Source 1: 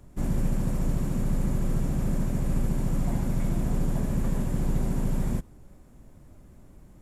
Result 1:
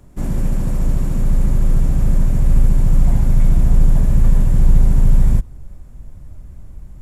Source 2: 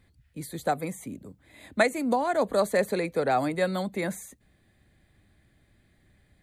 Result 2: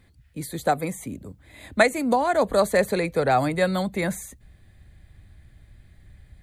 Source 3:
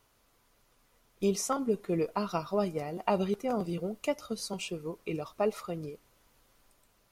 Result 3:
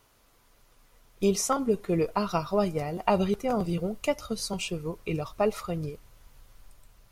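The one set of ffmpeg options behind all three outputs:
-af "asubboost=boost=4.5:cutoff=120,volume=1.78"

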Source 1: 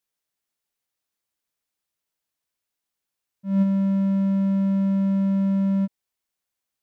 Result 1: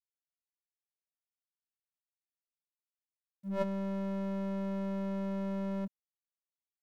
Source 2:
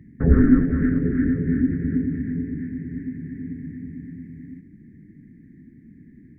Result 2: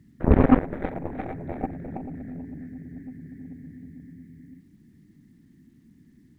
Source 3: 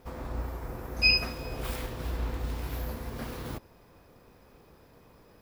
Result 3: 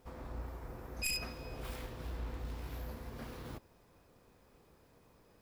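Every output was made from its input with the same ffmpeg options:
-af "highshelf=f=10000:g=-5,acrusher=bits=10:mix=0:aa=0.000001,aeval=exprs='0.75*(cos(1*acos(clip(val(0)/0.75,-1,1)))-cos(1*PI/2))+0.0473*(cos(4*acos(clip(val(0)/0.75,-1,1)))-cos(4*PI/2))+0.00596*(cos(5*acos(clip(val(0)/0.75,-1,1)))-cos(5*PI/2))+0.168*(cos(7*acos(clip(val(0)/0.75,-1,1)))-cos(7*PI/2))':c=same,volume=0.75"

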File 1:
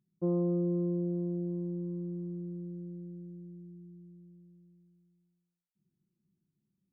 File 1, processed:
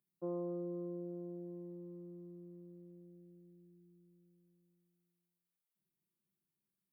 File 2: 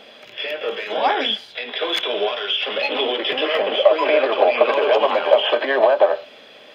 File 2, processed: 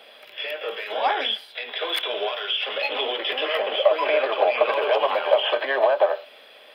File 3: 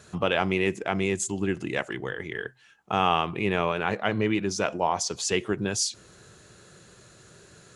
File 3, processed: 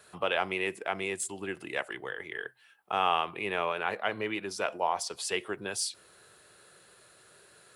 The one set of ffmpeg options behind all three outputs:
-filter_complex "[0:a]acrossover=split=410 6400:gain=0.2 1 0.0708[s0][s1][s2];[s0][s1][s2]amix=inputs=3:normalize=0,aexciter=amount=14.1:drive=9.1:freq=9600,volume=0.708"

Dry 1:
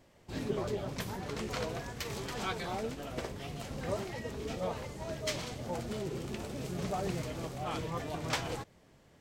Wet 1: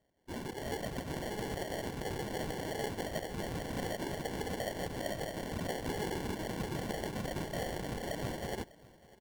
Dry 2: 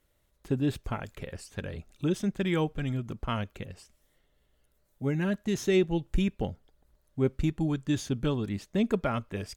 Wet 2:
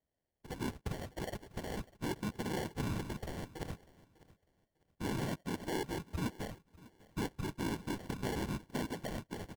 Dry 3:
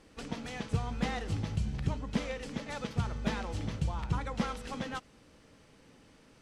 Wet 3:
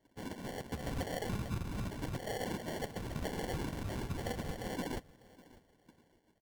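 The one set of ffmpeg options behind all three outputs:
-filter_complex "[0:a]afftdn=nr=20:nf=-42,highpass=54,bass=f=250:g=-4,treble=f=4000:g=-8,acompressor=threshold=0.0112:ratio=6,alimiter=level_in=7.08:limit=0.0631:level=0:latency=1:release=227,volume=0.141,dynaudnorm=f=270:g=5:m=1.78,acrusher=bits=2:mode=log:mix=0:aa=0.000001,afftfilt=real='hypot(re,im)*cos(2*PI*random(0))':imag='hypot(re,im)*sin(2*PI*random(1))':win_size=512:overlap=0.75,acrusher=samples=35:mix=1:aa=0.000001,asplit=2[s0][s1];[s1]aecho=0:1:599|1198:0.0891|0.0205[s2];[s0][s2]amix=inputs=2:normalize=0,volume=4.22"

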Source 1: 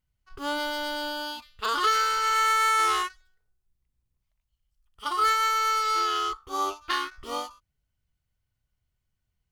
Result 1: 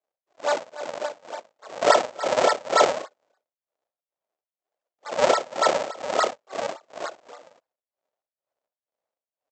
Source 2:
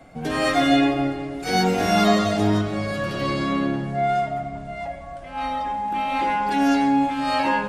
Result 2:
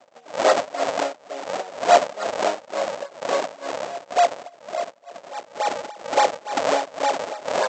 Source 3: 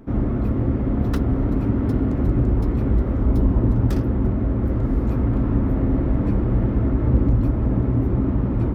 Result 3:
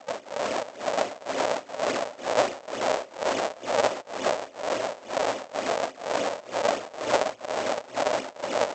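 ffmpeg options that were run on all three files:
-af "adynamicequalizer=threshold=0.0141:dfrequency=1600:dqfactor=1:tfrequency=1600:tqfactor=1:attack=5:release=100:ratio=0.375:range=3.5:mode=boostabove:tftype=bell,aresample=16000,acrusher=samples=26:mix=1:aa=0.000001:lfo=1:lforange=41.6:lforate=3.5,aresample=44100,tremolo=f=2.1:d=0.93,highpass=f=600:t=q:w=3.5"

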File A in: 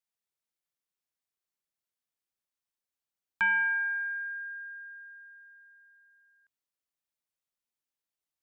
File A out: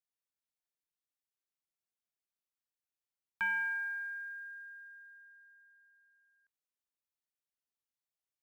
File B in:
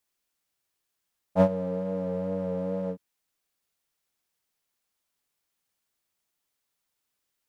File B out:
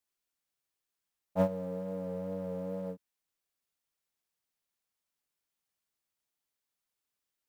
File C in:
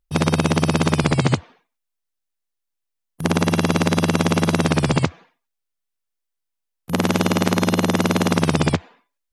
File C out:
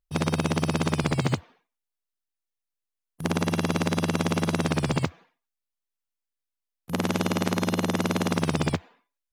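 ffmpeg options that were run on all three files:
-af "acrusher=bits=9:mode=log:mix=0:aa=0.000001,volume=0.447"

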